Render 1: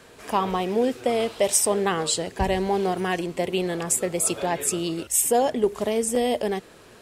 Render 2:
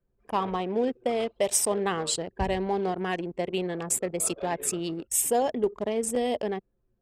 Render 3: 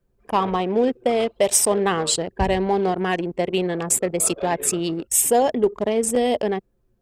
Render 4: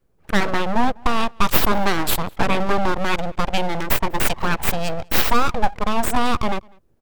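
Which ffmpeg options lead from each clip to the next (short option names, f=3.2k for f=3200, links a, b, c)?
-af "anlmdn=39.8,volume=-4dB"
-af "acontrast=88"
-filter_complex "[0:a]aeval=exprs='abs(val(0))':c=same,asplit=2[a][b];[b]adelay=198.3,volume=-28dB,highshelf=f=4k:g=-4.46[c];[a][c]amix=inputs=2:normalize=0,volume=4dB"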